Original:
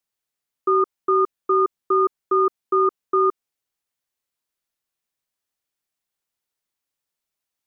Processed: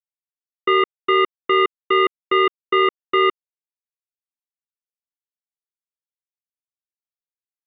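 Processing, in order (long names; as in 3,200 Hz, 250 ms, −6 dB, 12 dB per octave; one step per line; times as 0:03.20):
power curve on the samples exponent 3
downsampling to 8,000 Hz
level +6 dB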